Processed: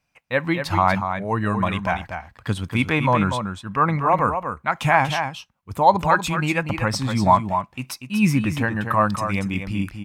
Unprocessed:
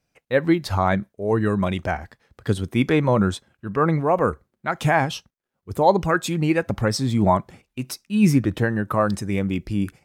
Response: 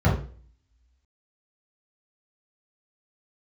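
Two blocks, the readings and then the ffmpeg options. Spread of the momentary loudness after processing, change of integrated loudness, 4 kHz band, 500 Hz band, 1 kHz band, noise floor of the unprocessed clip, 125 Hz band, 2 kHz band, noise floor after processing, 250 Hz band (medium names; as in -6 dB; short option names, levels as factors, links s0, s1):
9 LU, +0.5 dB, +2.0 dB, -3.0 dB, +5.0 dB, -78 dBFS, -0.5 dB, +3.5 dB, -62 dBFS, -2.0 dB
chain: -af "equalizer=f=400:t=o:w=0.67:g=-9,equalizer=f=1000:t=o:w=0.67:g=8,equalizer=f=2500:t=o:w=0.67:g=7,aecho=1:1:240:0.422,volume=0.891"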